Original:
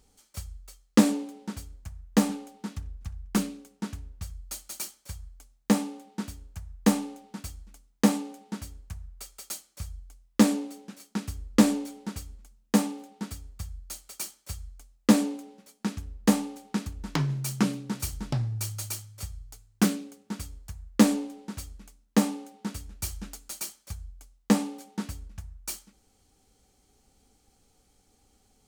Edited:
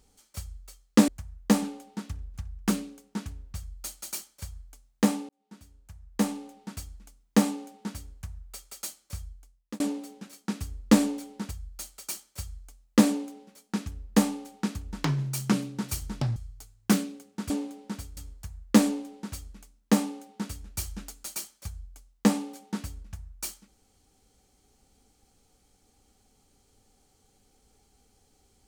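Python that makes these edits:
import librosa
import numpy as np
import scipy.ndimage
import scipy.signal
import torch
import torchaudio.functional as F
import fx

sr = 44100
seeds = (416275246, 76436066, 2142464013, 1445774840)

y = fx.edit(x, sr, fx.move(start_s=1.08, length_s=0.67, to_s=20.42),
    fx.fade_in_span(start_s=5.96, length_s=1.5),
    fx.fade_out_span(start_s=9.87, length_s=0.6),
    fx.cut(start_s=12.18, length_s=1.44),
    fx.cut(start_s=18.47, length_s=0.81), tone=tone)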